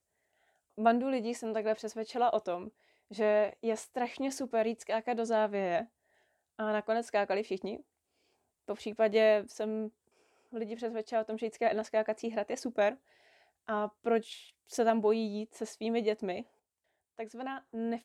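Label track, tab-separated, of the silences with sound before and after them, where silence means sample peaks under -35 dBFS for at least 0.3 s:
2.670000	3.180000	silence
5.820000	6.590000	silence
7.770000	8.690000	silence
9.870000	10.550000	silence
12.920000	13.690000	silence
14.330000	14.740000	silence
16.410000	17.190000	silence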